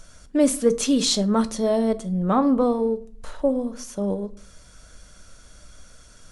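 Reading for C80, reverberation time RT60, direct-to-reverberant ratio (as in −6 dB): 24.0 dB, 0.50 s, 10.5 dB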